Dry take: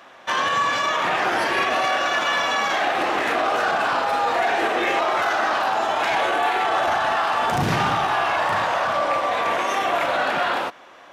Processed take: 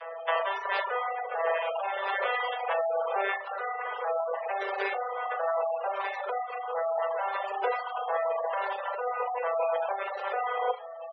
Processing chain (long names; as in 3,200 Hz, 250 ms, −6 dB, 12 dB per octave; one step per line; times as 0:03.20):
vocoder with an arpeggio as carrier minor triad, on E3, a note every 449 ms
0:03.33–0:04.08: dynamic equaliser 1,800 Hz, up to +7 dB, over −39 dBFS, Q 1.7
in parallel at −4.5 dB: sample-rate reduction 1,900 Hz, jitter 20%
on the sum: Butterworth high-pass 450 Hz 72 dB per octave
compressor whose output falls as the input rises −29 dBFS, ratio −1
0:00.83–0:01.43: high-frequency loss of the air 140 metres
double-tracking delay 38 ms −5 dB
repeating echo 76 ms, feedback 59%, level −8 dB
reverb reduction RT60 1.2 s
gate on every frequency bin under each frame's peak −20 dB strong